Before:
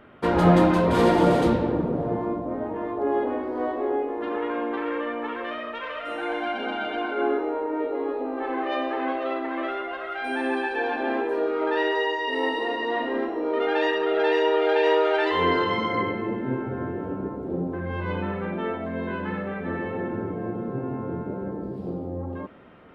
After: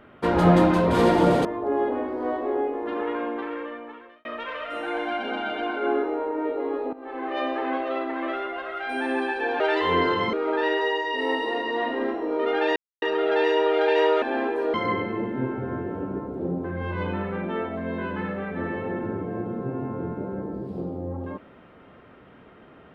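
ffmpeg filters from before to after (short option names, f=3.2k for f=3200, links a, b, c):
-filter_complex "[0:a]asplit=9[a][b][c][d][e][f][g][h][i];[a]atrim=end=1.452[j];[b]atrim=start=2.798:end=5.6,asetpts=PTS-STARTPTS,afade=t=out:st=1.672:d=1.13[k];[c]atrim=start=5.6:end=8.28,asetpts=PTS-STARTPTS,afade=t=in:d=0.004:c=hsin,afade=t=out:st=2.676:d=0.004:c=hsin:silence=0.16788[l];[d]atrim=start=8.28:end=10.952,asetpts=PTS-STARTPTS,afade=t=in:d=0.5:silence=0.16788[m];[e]atrim=start=15.098:end=15.832[n];[f]atrim=start=11.468:end=13.9,asetpts=PTS-STARTPTS,afade=t=out:st=2.428:d=0.004:c=hsin,apad=pad_dur=0.26[o];[g]atrim=start=13.9:end=15.102,asetpts=PTS-STARTPTS,afade=t=in:d=0.004:c=hsin[p];[h]atrim=start=10.948:end=11.472[q];[i]atrim=start=15.828[r];[k][l][m]concat=n=3:v=0:a=1[s];[j][s]acrossfade=d=0.004:c1=hsin:c2=hsin[t];[t][n]acrossfade=d=0.004:c1=hsin:c2=hsin[u];[o][p]concat=n=2:v=0:a=1[v];[u][v]acrossfade=d=0.004:c1=hsin:c2=hsin[w];[w][q]acrossfade=d=0.004:c1=hsin:c2=hsin[x];[x][r]acrossfade=d=0.004:c1=hsin:c2=hsin"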